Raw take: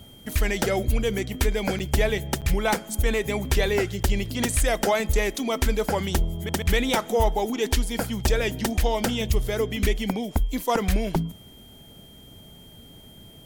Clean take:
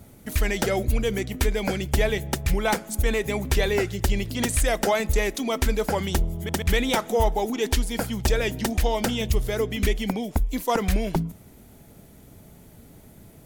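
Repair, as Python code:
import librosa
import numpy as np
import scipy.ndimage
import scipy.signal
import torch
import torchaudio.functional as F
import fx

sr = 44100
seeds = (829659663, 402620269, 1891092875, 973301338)

y = fx.notch(x, sr, hz=3200.0, q=30.0)
y = fx.fix_interpolate(y, sr, at_s=(1.79, 2.41, 4.03), length_ms=7.8)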